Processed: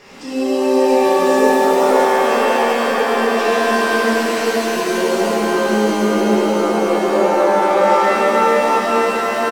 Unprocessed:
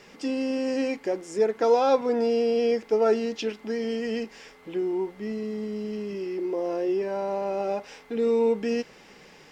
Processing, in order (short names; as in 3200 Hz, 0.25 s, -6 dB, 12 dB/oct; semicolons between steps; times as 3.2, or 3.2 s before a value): bell 940 Hz +4 dB; in parallel at +1.5 dB: compressor, threshold -36 dBFS, peak gain reduction 19.5 dB; on the sum: transient shaper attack -4 dB, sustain +4 dB; vocal rider within 4 dB 0.5 s; bouncing-ball echo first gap 0.52 s, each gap 0.9×, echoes 5; shimmer reverb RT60 3.4 s, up +7 st, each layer -2 dB, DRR -9 dB; gain -6 dB